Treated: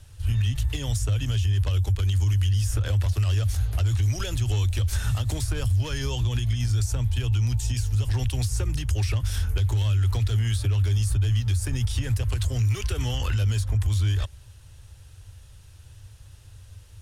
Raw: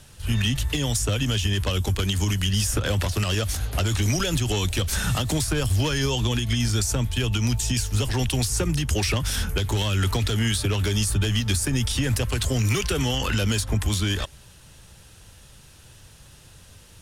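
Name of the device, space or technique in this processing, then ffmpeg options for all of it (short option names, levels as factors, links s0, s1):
car stereo with a boomy subwoofer: -af "lowshelf=f=130:t=q:w=3:g=8.5,alimiter=limit=0.335:level=0:latency=1:release=99,volume=0.447"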